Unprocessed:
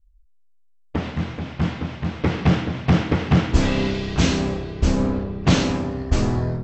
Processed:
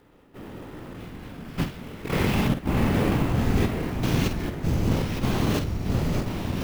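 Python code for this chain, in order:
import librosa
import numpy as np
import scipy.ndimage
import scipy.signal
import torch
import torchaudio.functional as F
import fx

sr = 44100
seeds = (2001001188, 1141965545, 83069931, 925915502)

y = fx.spec_swells(x, sr, rise_s=2.23)
y = fx.high_shelf(y, sr, hz=2400.0, db=fx.steps((0.0, 3.5), (1.47, 10.0), (2.47, -3.5)))
y = fx.level_steps(y, sr, step_db=17)
y = fx.whisperise(y, sr, seeds[0])
y = fx.echo_pitch(y, sr, ms=388, semitones=-2, count=3, db_per_echo=-6.0)
y = fx.doubler(y, sr, ms=49.0, db=-9.0)
y = fx.clock_jitter(y, sr, seeds[1], jitter_ms=0.02)
y = F.gain(torch.from_numpy(y), -6.0).numpy()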